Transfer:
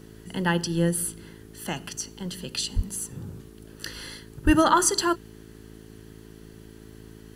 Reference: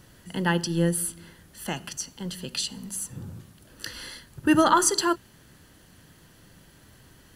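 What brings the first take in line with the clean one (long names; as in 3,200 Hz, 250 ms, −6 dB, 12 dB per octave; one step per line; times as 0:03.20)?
hum removal 54.4 Hz, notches 8
0:02.75–0:02.87: high-pass filter 140 Hz 24 dB per octave
0:04.45–0:04.57: high-pass filter 140 Hz 24 dB per octave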